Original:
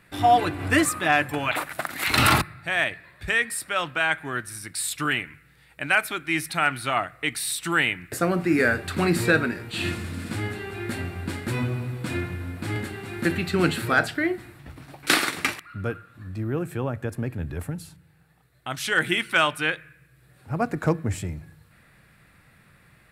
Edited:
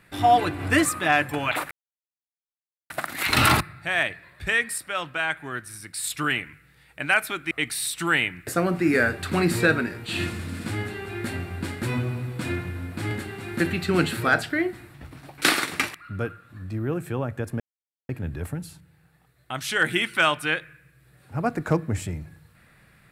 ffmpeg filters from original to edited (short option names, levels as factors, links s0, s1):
-filter_complex "[0:a]asplit=6[s0][s1][s2][s3][s4][s5];[s0]atrim=end=1.71,asetpts=PTS-STARTPTS,afade=t=out:st=1.706:d=0.004:c=hsin,apad=pad_dur=1.19[s6];[s1]atrim=start=1.71:end=3.592,asetpts=PTS-STARTPTS,afade=t=in:d=0.004:c=hsin[s7];[s2]atrim=start=3.588:end=4.852,asetpts=PTS-STARTPTS,volume=0.708[s8];[s3]atrim=start=4.848:end=6.322[s9];[s4]atrim=start=7.158:end=17.25,asetpts=PTS-STARTPTS,afade=t=out:st=10.088:d=0.004:c=hsin,apad=pad_dur=0.49[s10];[s5]atrim=start=17.25,asetpts=PTS-STARTPTS,afade=t=in:d=0.004:c=hsin[s11];[s6][s7]concat=n=2:v=0:a=1[s12];[s12][s8]acrossfade=d=0.004:c1=hsin:c2=hsin[s13];[s13][s9]acrossfade=d=0.004:c1=hsin:c2=hsin[s14];[s10][s11]concat=n=2:v=0:a=1[s15];[s14][s15]acrossfade=d=0.004:c1=hsin:c2=hsin"